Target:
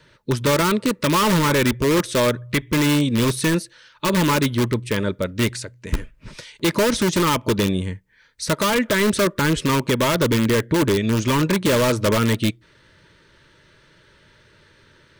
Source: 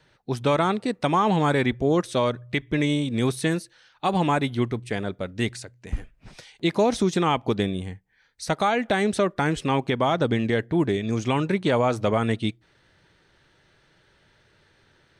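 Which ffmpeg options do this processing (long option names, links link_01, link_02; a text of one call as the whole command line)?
ffmpeg -i in.wav -filter_complex "[0:a]asplit=2[link_01][link_02];[link_02]aeval=exprs='(mod(7.5*val(0)+1,2)-1)/7.5':channel_layout=same,volume=-3dB[link_03];[link_01][link_03]amix=inputs=2:normalize=0,asuperstop=centerf=750:order=8:qfactor=3.8,acontrast=51,volume=-3.5dB" out.wav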